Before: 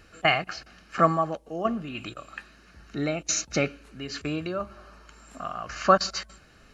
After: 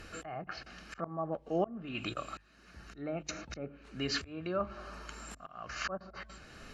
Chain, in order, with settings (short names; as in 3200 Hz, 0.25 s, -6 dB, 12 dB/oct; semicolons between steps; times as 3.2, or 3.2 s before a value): treble ducked by the level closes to 860 Hz, closed at -22 dBFS; auto swell 0.762 s; notches 50/100/150 Hz; gain +5 dB